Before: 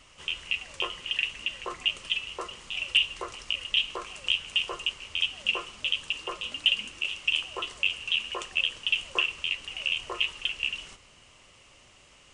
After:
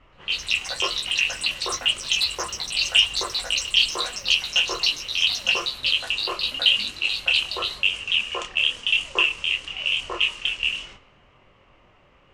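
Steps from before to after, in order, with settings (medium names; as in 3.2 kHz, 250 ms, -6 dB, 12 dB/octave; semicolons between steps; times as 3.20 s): chorus voices 2, 0.94 Hz, delay 25 ms, depth 4.7 ms; in parallel at -11 dB: crossover distortion -50 dBFS; on the sum: level-controlled noise filter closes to 1.5 kHz, open at -27.5 dBFS; ever faster or slower copies 123 ms, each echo +6 st, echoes 3, each echo -6 dB; trim +7 dB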